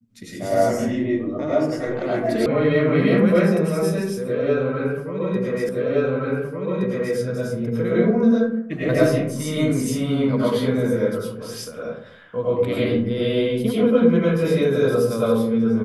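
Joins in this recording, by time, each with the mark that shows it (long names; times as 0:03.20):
0:02.46: cut off before it has died away
0:05.69: the same again, the last 1.47 s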